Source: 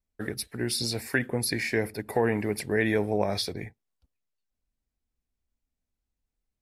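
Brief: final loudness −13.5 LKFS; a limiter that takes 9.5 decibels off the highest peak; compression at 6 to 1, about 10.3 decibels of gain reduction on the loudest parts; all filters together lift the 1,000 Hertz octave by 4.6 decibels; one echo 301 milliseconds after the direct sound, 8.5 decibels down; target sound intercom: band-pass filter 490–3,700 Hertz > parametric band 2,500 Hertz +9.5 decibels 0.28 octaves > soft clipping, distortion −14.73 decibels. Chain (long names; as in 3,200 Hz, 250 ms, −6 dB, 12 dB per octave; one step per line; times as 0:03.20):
parametric band 1,000 Hz +7 dB
downward compressor 6 to 1, threshold −29 dBFS
brickwall limiter −25 dBFS
band-pass filter 490–3,700 Hz
parametric band 2,500 Hz +9.5 dB 0.28 octaves
single-tap delay 301 ms −8.5 dB
soft clipping −31 dBFS
level +26.5 dB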